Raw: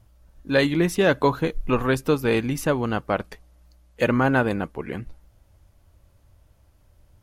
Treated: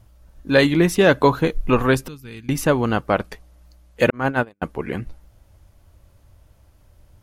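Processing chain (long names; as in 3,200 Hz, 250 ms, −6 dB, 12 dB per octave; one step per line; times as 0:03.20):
0:02.08–0:02.49: guitar amp tone stack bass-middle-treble 6-0-2
0:04.10–0:04.62: noise gate −17 dBFS, range −54 dB
level +4.5 dB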